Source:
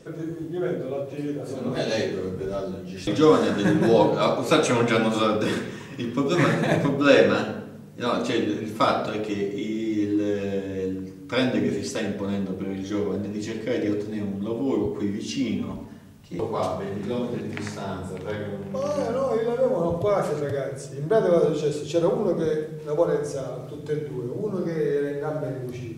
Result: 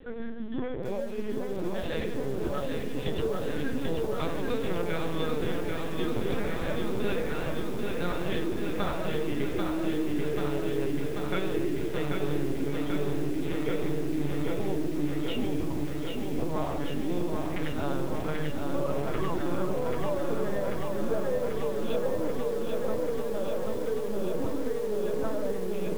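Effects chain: compression 16:1, threshold -27 dBFS, peak gain reduction 17 dB; de-hum 54.83 Hz, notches 5; formant-preserving pitch shift +6.5 st; LPC vocoder at 8 kHz pitch kept; bit-crushed delay 788 ms, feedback 80%, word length 8-bit, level -4 dB

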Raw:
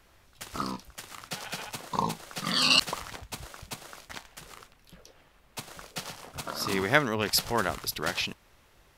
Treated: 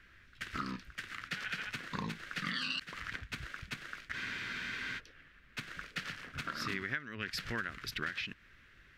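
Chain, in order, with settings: FFT filter 280 Hz 0 dB, 860 Hz -16 dB, 1.6 kHz +10 dB, 10 kHz -15 dB; compression 20:1, threshold -32 dBFS, peak gain reduction 22.5 dB; spectral freeze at 4.16 s, 0.83 s; trim -1.5 dB

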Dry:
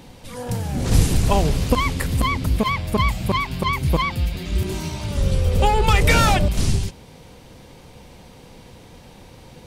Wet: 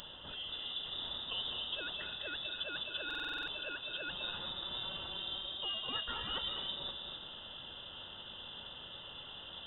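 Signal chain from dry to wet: high-pass 57 Hz 24 dB/octave; tilt EQ +2 dB/octave; reverse; compression 6:1, threshold -36 dBFS, peak gain reduction 21.5 dB; reverse; static phaser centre 370 Hz, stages 6; on a send at -3 dB: reverberation RT60 1.0 s, pre-delay 190 ms; on the sum: frequency inversion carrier 3.7 kHz; buffer glitch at 3.06 s, samples 2048, times 8

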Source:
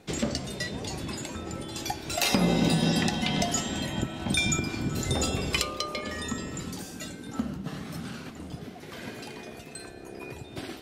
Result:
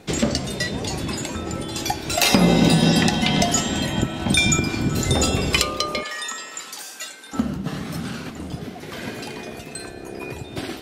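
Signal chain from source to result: 6.03–7.33 s: high-pass 920 Hz 12 dB/octave; trim +8 dB

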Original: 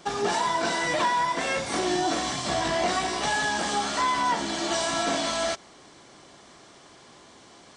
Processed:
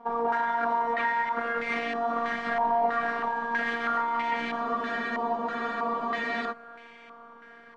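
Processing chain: peak limiter -20 dBFS, peak gain reduction 5 dB; robot voice 233 Hz; echo that smears into a reverb 634 ms, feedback 54%, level -16 dB; spectral freeze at 4.65 s, 1.86 s; step-sequenced low-pass 3.1 Hz 950–2200 Hz

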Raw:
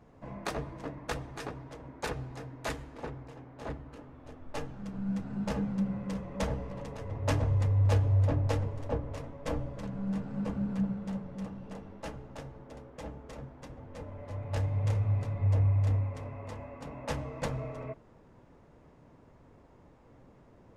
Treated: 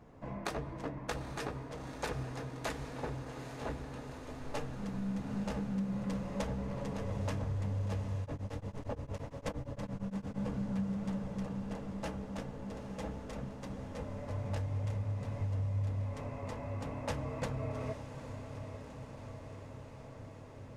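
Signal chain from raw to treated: compression 10:1, threshold -34 dBFS, peak gain reduction 13.5 dB; echo that smears into a reverb 844 ms, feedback 73%, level -9.5 dB; 8.21–10.41 s: tremolo of two beating tones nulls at 8.7 Hz; trim +1 dB

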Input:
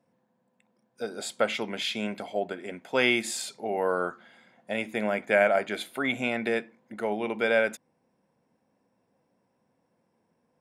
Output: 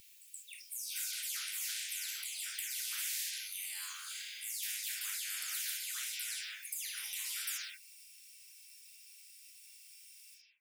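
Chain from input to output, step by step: delay that grows with frequency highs early, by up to 259 ms; elliptic high-pass 2.4 kHz, stop band 80 dB; differentiator; in parallel at -2 dB: compression, threshold -52 dBFS, peak gain reduction 19.5 dB; on the sum: reverberation, pre-delay 3 ms, DRR -1.5 dB; spectrum-flattening compressor 10:1; trim -2.5 dB

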